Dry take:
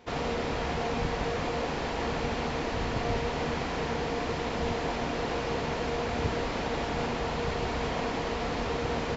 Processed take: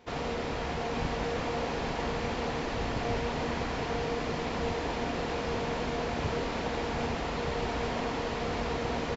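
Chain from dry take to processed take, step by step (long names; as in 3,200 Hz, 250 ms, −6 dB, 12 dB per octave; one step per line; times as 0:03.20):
single-tap delay 855 ms −5.5 dB
level −2.5 dB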